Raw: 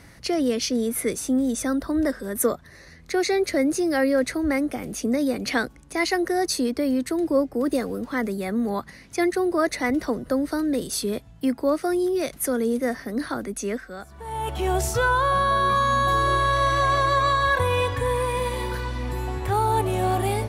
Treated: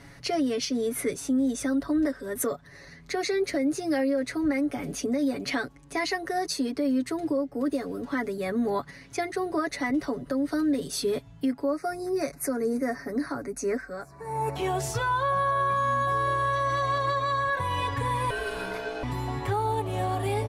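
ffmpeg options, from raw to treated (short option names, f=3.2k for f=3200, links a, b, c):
-filter_complex "[0:a]asettb=1/sr,asplit=3[a][b][c];[a]atrim=end=11.654[d];[b]atrim=start=11.65:end=14.56,asetpts=PTS-STARTPTS,afade=t=in:d=0.004:c=qsin,afade=t=out:st=2.906:d=0.004:c=qsin,asuperstop=centerf=3200:order=4:qfactor=1.7[e];[c]atrim=start=14.556[f];[d][e]acrossfade=d=0.004:c1=hsin:c2=qsin[g];[g][f]acrossfade=d=0.004:c1=qsin:c2=hsin,asettb=1/sr,asplit=3[h][i][j];[h]atrim=end=18.304[k];[i]atrim=start=18.3:end=19.03,asetpts=PTS-STARTPTS,afade=t=in:d=0.004:c=qsin,afade=t=out:st=0.726:d=0.004:c=qsin,aeval=exprs='val(0)*sin(2*PI*560*n/s)':c=same[l];[j]atrim=start=19.026[m];[k][l]acrossfade=d=0.004:c1=hsin:c2=qsin[n];[n][m]acrossfade=d=0.004:c1=qsin:c2=hsin,highshelf=f=9.7k:g=-9.5,aecho=1:1:7.1:0.79,alimiter=limit=-16.5dB:level=0:latency=1:release=377,volume=-2dB"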